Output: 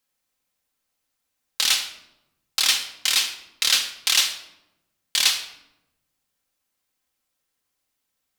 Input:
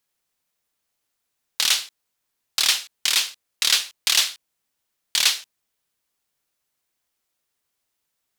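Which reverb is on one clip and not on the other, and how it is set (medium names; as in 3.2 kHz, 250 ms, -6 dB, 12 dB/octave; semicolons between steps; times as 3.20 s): simulated room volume 3400 m³, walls furnished, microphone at 2.1 m; trim -1.5 dB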